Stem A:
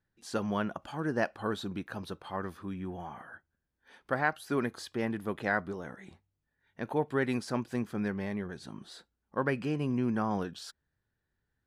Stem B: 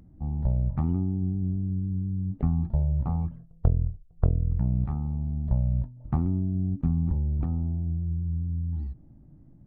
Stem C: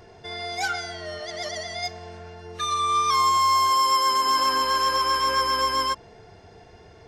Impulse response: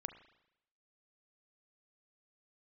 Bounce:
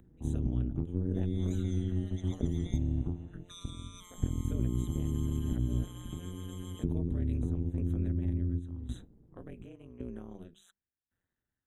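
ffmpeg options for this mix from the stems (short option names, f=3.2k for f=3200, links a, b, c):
-filter_complex "[0:a]aeval=exprs='val(0)*pow(10,-20*if(lt(mod(0.9*n/s,1),2*abs(0.9)/1000),1-mod(0.9*n/s,1)/(2*abs(0.9)/1000),(mod(0.9*n/s,1)-2*abs(0.9)/1000)/(1-2*abs(0.9)/1000))/20)':c=same,volume=2.5dB,asplit=2[a][b];[1:a]acompressor=threshold=-30dB:ratio=6,volume=3dB,asplit=2[c][d];[d]volume=-4dB[e];[2:a]acompressor=threshold=-23dB:ratio=6,adynamicequalizer=threshold=0.00891:dfrequency=1700:dqfactor=0.7:tfrequency=1700:tqfactor=0.7:attack=5:release=100:ratio=0.375:range=3.5:mode=boostabove:tftype=highshelf,adelay=900,volume=-15dB[f];[b]apad=whole_len=426037[g];[c][g]sidechaingate=range=-33dB:threshold=-54dB:ratio=16:detection=peak[h];[a][f]amix=inputs=2:normalize=0,bandreject=f=50:t=h:w=6,bandreject=f=100:t=h:w=6,bandreject=f=150:t=h:w=6,bandreject=f=200:t=h:w=6,acompressor=threshold=-36dB:ratio=2.5,volume=0dB[i];[3:a]atrim=start_sample=2205[j];[e][j]afir=irnorm=-1:irlink=0[k];[h][i][k]amix=inputs=3:normalize=0,acrossover=split=480|3000[l][m][n];[m]acompressor=threshold=-58dB:ratio=10[o];[l][o][n]amix=inputs=3:normalize=0,tremolo=f=180:d=0.974,asuperstop=centerf=4900:order=20:qfactor=2.4"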